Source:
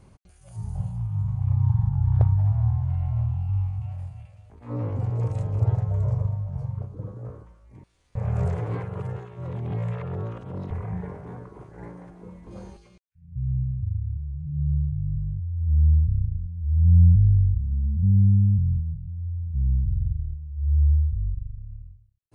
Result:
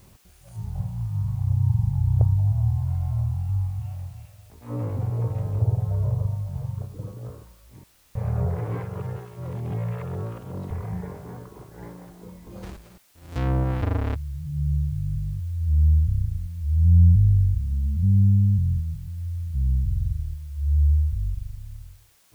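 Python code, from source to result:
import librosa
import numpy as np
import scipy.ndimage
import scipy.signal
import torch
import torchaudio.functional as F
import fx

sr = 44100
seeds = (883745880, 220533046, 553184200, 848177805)

y = fx.halfwave_hold(x, sr, at=(12.62, 14.14), fade=0.02)
y = fx.env_lowpass_down(y, sr, base_hz=750.0, full_db=-18.0)
y = fx.quant_dither(y, sr, seeds[0], bits=10, dither='triangular')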